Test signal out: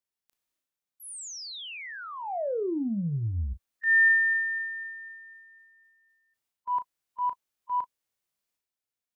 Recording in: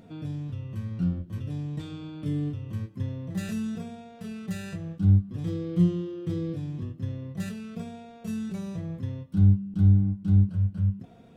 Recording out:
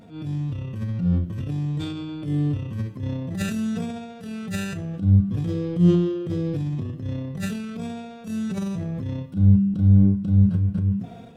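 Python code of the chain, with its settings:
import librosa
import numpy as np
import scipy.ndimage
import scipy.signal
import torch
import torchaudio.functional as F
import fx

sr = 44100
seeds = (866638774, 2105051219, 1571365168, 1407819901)

y = fx.hpss(x, sr, part='percussive', gain_db=-11)
y = fx.transient(y, sr, attack_db=-9, sustain_db=7)
y = fx.doubler(y, sr, ms=35.0, db=-12.5)
y = y * 10.0 ** (6.0 / 20.0)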